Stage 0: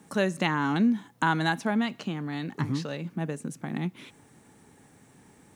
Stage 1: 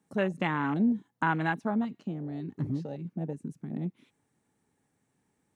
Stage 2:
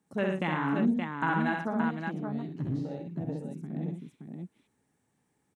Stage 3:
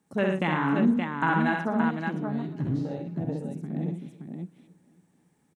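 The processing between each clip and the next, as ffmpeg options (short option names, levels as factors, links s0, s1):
-af "afwtdn=0.0316,volume=0.75"
-af "aecho=1:1:64|117|572:0.668|0.376|0.562,volume=0.75"
-af "aecho=1:1:278|556|834|1112|1390:0.0794|0.0477|0.0286|0.0172|0.0103,volume=1.58"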